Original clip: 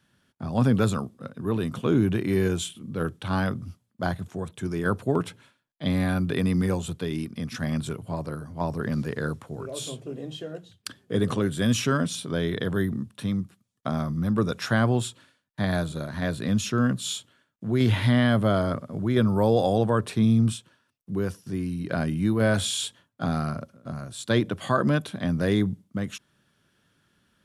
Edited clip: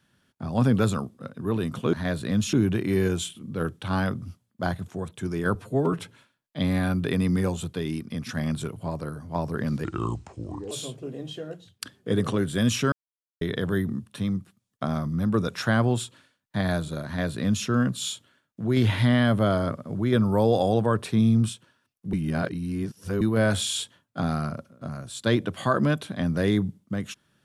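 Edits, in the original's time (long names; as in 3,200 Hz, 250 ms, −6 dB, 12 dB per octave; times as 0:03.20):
0:04.95–0:05.24: time-stretch 1.5×
0:09.10–0:09.75: play speed 75%
0:11.96–0:12.45: silence
0:16.10–0:16.70: duplicate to 0:01.93
0:21.17–0:22.25: reverse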